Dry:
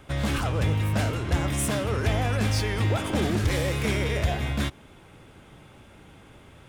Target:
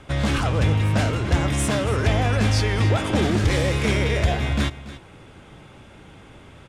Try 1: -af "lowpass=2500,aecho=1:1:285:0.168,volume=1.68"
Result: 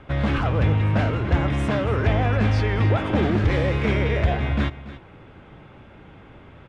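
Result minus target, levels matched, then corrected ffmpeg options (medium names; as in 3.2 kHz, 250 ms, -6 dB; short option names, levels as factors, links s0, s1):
8 kHz band -17.5 dB
-af "lowpass=8700,aecho=1:1:285:0.168,volume=1.68"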